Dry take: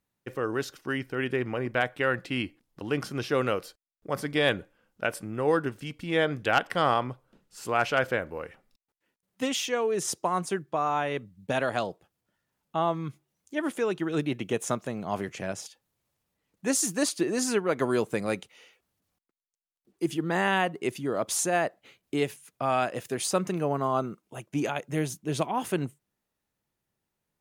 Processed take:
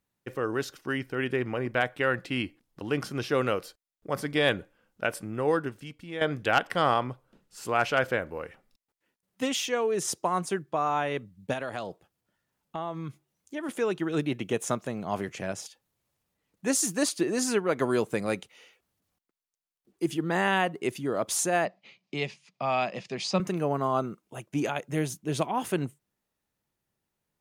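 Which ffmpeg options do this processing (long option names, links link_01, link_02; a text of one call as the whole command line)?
ffmpeg -i in.wav -filter_complex "[0:a]asettb=1/sr,asplit=3[link_01][link_02][link_03];[link_01]atrim=end=11.534[link_04];[link_02]atrim=start=11.53:end=13.69,asetpts=PTS-STARTPTS,afade=type=in:duration=0.004:curve=qsin,afade=type=out:start_time=2.156:duration=0.004:curve=qsin,acompressor=threshold=-32dB:ratio=2.5:attack=3.2:release=140:knee=1:detection=peak[link_05];[link_03]atrim=start=13.686[link_06];[link_04][link_05]acrossfade=duration=0.004:curve1=hsin:curve2=qsin[link_07];[link_07][link_06]acrossfade=duration=0.004:curve1=qsin:curve2=hsin,asettb=1/sr,asplit=3[link_08][link_09][link_10];[link_08]atrim=end=21.654[link_11];[link_09]atrim=start=21.65:end=23.4,asetpts=PTS-STARTPTS,afade=type=in:duration=0.004:curve=qsin,afade=type=out:start_time=1.746:duration=0.004:curve=qsin,highpass=frequency=130:width=0.5412,highpass=frequency=130:width=1.3066,equalizer=frequency=190:width_type=q:width=4:gain=8,equalizer=frequency=290:width_type=q:width=4:gain=-9,equalizer=frequency=450:width_type=q:width=4:gain=-6,equalizer=frequency=1500:width_type=q:width=4:gain=-9,equalizer=frequency=2400:width_type=q:width=4:gain=5,equalizer=frequency=4800:width_type=q:width=4:gain=5,lowpass=frequency=5800:width=0.5412,lowpass=frequency=5800:width=1.3066[link_12];[link_10]atrim=start=23.396[link_13];[link_11][link_12]acrossfade=duration=0.004:curve1=hsin:curve2=qsin[link_14];[link_14][link_13]acrossfade=duration=0.004:curve1=qsin:curve2=hsin,asplit=2[link_15][link_16];[link_15]atrim=end=6.21,asetpts=PTS-STARTPTS,afade=type=out:start_time=5.37:duration=0.84:silence=0.266073[link_17];[link_16]atrim=start=6.21,asetpts=PTS-STARTPTS,afade=type=in:duration=0.004:curve=hsin:silence=0.266073[link_18];[link_17][link_18]concat=n=2:v=0:a=1" out.wav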